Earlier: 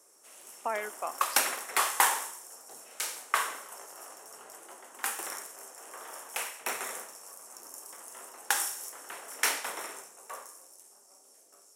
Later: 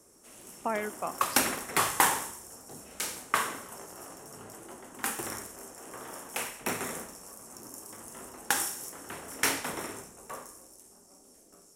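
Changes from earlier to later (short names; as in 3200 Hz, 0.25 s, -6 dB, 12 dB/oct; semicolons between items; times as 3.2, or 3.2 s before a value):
background: add bell 250 Hz +4 dB 1.4 oct; master: remove HPF 490 Hz 12 dB/oct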